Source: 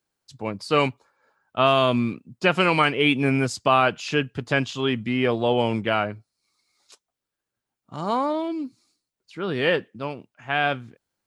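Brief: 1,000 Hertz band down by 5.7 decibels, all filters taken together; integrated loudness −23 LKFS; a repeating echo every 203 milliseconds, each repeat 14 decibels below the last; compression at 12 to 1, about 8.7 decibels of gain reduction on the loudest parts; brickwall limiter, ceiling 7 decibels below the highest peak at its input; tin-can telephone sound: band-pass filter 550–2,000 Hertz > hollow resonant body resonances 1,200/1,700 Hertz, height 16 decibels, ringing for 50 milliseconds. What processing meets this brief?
parametric band 1,000 Hz −6.5 dB
downward compressor 12 to 1, threshold −25 dBFS
brickwall limiter −20 dBFS
band-pass filter 550–2,000 Hz
repeating echo 203 ms, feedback 20%, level −14 dB
hollow resonant body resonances 1,200/1,700 Hz, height 16 dB, ringing for 50 ms
level +11 dB

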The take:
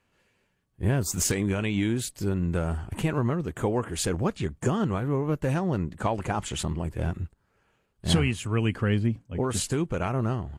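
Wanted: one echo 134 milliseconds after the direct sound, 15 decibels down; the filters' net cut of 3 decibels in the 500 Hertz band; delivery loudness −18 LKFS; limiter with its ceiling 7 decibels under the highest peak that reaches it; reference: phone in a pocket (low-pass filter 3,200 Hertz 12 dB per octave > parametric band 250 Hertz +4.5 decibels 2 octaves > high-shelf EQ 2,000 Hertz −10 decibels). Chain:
parametric band 500 Hz −7 dB
brickwall limiter −18 dBFS
low-pass filter 3,200 Hz 12 dB per octave
parametric band 250 Hz +4.5 dB 2 octaves
high-shelf EQ 2,000 Hz −10 dB
single-tap delay 134 ms −15 dB
level +10 dB

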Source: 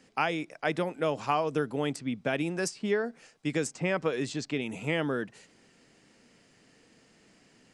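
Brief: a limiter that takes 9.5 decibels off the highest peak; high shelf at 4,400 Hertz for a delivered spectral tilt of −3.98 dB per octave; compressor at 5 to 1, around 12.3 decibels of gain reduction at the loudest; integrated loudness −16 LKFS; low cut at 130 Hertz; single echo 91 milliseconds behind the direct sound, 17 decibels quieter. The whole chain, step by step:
high-pass filter 130 Hz
high-shelf EQ 4,400 Hz +8 dB
downward compressor 5 to 1, threshold −37 dBFS
brickwall limiter −30.5 dBFS
single-tap delay 91 ms −17 dB
level +26.5 dB

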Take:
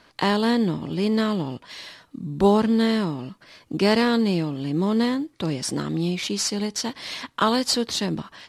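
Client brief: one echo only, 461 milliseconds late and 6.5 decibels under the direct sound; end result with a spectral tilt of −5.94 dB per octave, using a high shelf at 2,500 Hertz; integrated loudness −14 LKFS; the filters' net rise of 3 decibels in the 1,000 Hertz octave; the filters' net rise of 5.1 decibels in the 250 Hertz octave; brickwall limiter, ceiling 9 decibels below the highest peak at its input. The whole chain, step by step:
parametric band 250 Hz +6 dB
parametric band 1,000 Hz +4 dB
high-shelf EQ 2,500 Hz −4.5 dB
brickwall limiter −12.5 dBFS
single-tap delay 461 ms −6.5 dB
level +7.5 dB

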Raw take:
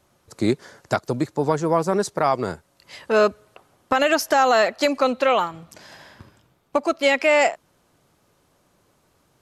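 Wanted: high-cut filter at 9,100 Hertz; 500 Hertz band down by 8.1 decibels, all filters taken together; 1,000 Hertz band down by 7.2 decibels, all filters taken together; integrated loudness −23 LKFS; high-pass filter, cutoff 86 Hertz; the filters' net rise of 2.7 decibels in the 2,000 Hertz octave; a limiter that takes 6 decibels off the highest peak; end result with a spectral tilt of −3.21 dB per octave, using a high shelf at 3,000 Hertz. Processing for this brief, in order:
high-pass filter 86 Hz
low-pass filter 9,100 Hz
parametric band 500 Hz −7.5 dB
parametric band 1,000 Hz −9 dB
parametric band 2,000 Hz +9 dB
high-shelf EQ 3,000 Hz −8 dB
level +3 dB
brickwall limiter −10.5 dBFS

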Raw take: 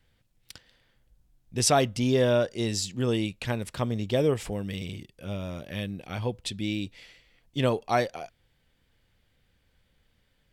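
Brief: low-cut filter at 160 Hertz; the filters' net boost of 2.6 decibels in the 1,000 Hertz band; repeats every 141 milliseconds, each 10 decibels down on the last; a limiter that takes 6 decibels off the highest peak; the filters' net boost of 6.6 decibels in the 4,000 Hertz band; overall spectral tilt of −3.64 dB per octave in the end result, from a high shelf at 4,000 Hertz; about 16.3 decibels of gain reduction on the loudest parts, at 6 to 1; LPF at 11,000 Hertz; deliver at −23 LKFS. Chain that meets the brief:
high-pass filter 160 Hz
low-pass filter 11,000 Hz
parametric band 1,000 Hz +3.5 dB
high-shelf EQ 4,000 Hz +7.5 dB
parametric band 4,000 Hz +3.5 dB
downward compressor 6 to 1, threshold −32 dBFS
brickwall limiter −24 dBFS
repeating echo 141 ms, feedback 32%, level −10 dB
level +14.5 dB

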